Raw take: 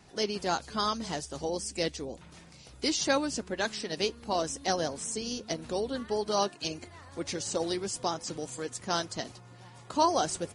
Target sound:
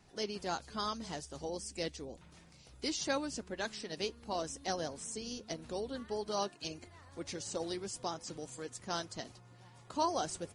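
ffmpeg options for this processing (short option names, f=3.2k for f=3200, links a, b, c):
-af "lowshelf=f=66:g=5.5,volume=-7.5dB"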